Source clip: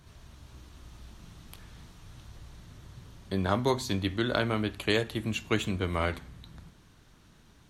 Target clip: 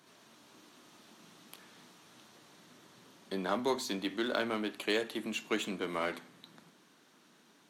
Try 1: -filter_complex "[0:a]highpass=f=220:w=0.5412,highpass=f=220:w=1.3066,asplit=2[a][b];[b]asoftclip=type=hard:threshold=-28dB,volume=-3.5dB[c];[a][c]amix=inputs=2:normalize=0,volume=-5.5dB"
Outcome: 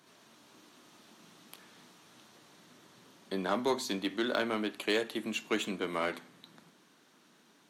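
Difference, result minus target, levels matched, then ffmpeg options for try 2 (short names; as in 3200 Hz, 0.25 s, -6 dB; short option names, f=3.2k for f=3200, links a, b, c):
hard clip: distortion -5 dB
-filter_complex "[0:a]highpass=f=220:w=0.5412,highpass=f=220:w=1.3066,asplit=2[a][b];[b]asoftclip=type=hard:threshold=-36.5dB,volume=-3.5dB[c];[a][c]amix=inputs=2:normalize=0,volume=-5.5dB"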